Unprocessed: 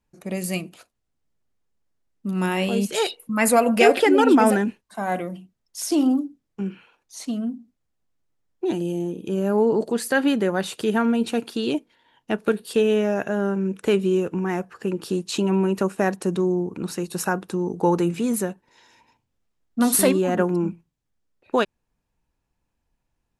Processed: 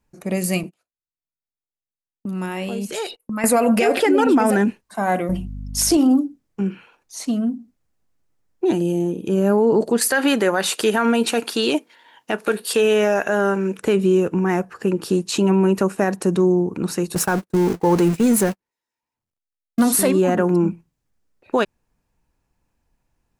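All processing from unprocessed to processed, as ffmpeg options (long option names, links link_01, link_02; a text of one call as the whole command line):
ffmpeg -i in.wav -filter_complex "[0:a]asettb=1/sr,asplit=3[link_01][link_02][link_03];[link_01]atrim=end=0.634[link_04];[link_02]atrim=start=0.63:end=3.44,asetpts=PTS-STARTPTS,afade=type=in:duration=0.004:curve=qsin,afade=type=out:start_time=2.806:duration=0.004:curve=qsin,agate=range=-29dB:threshold=-43dB:ratio=16:release=100:detection=peak,acompressor=threshold=-31dB:ratio=3:attack=3.2:release=140:knee=1:detection=peak[link_05];[link_03]atrim=start=3.436[link_06];[link_04][link_05]acrossfade=duration=0.004:curve1=hsin:curve2=qsin[link_07];[link_07][link_06]acrossfade=duration=0.004:curve1=qsin:curve2=hsin,asettb=1/sr,asplit=3[link_08][link_09][link_10];[link_08]atrim=end=5.294[link_11];[link_09]atrim=start=5.29:end=5.97,asetpts=PTS-STARTPTS,afade=type=in:duration=0.004:curve=qsin,afade=type=out:start_time=0.676:duration=0.004:curve=qsin,acontrast=65,aeval=exprs='val(0)+0.0178*(sin(2*PI*50*n/s)+sin(2*PI*2*50*n/s)/2+sin(2*PI*3*50*n/s)/3+sin(2*PI*4*50*n/s)/4+sin(2*PI*5*50*n/s)/5)':channel_layout=same[link_12];[link_10]atrim=start=5.966[link_13];[link_11][link_12]acrossfade=duration=0.004:curve1=hsin:curve2=qsin[link_14];[link_14][link_13]acrossfade=duration=0.004:curve1=qsin:curve2=hsin,asettb=1/sr,asplit=3[link_15][link_16][link_17];[link_15]atrim=end=10.014[link_18];[link_16]atrim=start=10.01:end=13.79,asetpts=PTS-STARTPTS,afade=type=in:duration=0.004:curve=qsin,afade=type=out:start_time=3.776:duration=0.004:curve=qsin,highpass=frequency=760:poles=1,acontrast=81[link_19];[link_17]atrim=start=13.786[link_20];[link_18][link_19]acrossfade=duration=0.004:curve1=hsin:curve2=qsin[link_21];[link_21][link_20]acrossfade=duration=0.004:curve1=qsin:curve2=hsin,asettb=1/sr,asplit=3[link_22][link_23][link_24];[link_22]atrim=end=17.154[link_25];[link_23]atrim=start=17.15:end=19.83,asetpts=PTS-STARTPTS,afade=type=in:duration=0.004:curve=qsin,afade=type=out:start_time=2.676:duration=0.004:curve=qsin,aeval=exprs='val(0)+0.5*0.0398*sgn(val(0))':channel_layout=same,agate=range=-59dB:threshold=-27dB:ratio=16:release=100:detection=peak[link_26];[link_24]atrim=start=19.826[link_27];[link_25][link_26]acrossfade=duration=0.004:curve1=hsin:curve2=qsin[link_28];[link_28][link_27]acrossfade=duration=0.004:curve1=qsin:curve2=hsin,equalizer=frequency=3400:width_type=o:width=0.61:gain=-3.5,alimiter=level_in=13dB:limit=-1dB:release=50:level=0:latency=1,volume=-7.5dB" out.wav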